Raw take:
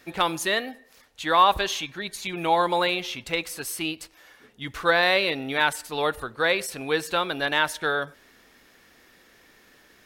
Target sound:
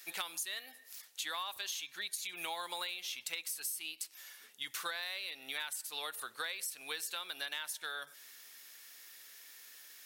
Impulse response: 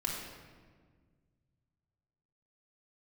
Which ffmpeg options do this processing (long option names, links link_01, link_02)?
-af "aderivative,acompressor=threshold=-44dB:ratio=12,volume=7.5dB"